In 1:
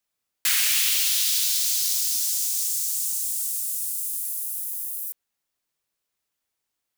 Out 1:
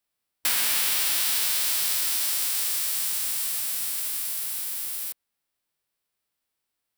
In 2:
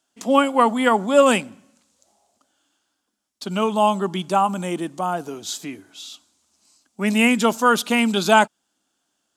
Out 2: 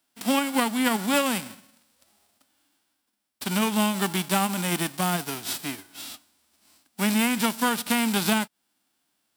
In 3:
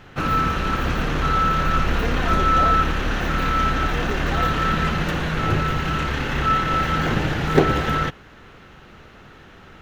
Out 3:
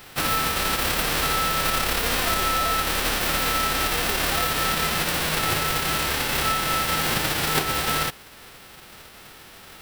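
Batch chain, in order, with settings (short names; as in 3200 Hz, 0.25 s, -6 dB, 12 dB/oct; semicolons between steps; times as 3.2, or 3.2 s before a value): spectral whitening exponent 0.3; bell 6600 Hz -7.5 dB 0.24 oct; compressor 10:1, threshold -19 dBFS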